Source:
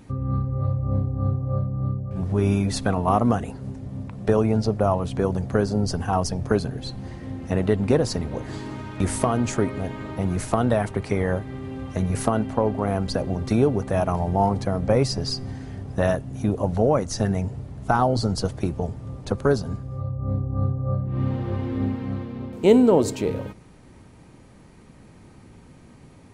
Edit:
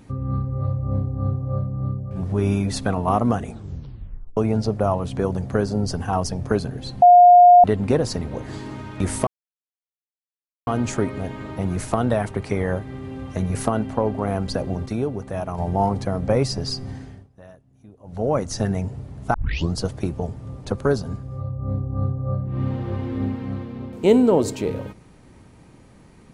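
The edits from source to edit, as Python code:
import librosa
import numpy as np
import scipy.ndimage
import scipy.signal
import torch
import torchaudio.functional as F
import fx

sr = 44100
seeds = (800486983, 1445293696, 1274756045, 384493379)

y = fx.edit(x, sr, fx.tape_stop(start_s=3.42, length_s=0.95),
    fx.bleep(start_s=7.02, length_s=0.62, hz=711.0, db=-6.0),
    fx.insert_silence(at_s=9.27, length_s=1.4),
    fx.clip_gain(start_s=13.46, length_s=0.72, db=-5.5),
    fx.fade_down_up(start_s=15.56, length_s=1.41, db=-24.0, fade_s=0.33),
    fx.tape_start(start_s=17.94, length_s=0.4), tone=tone)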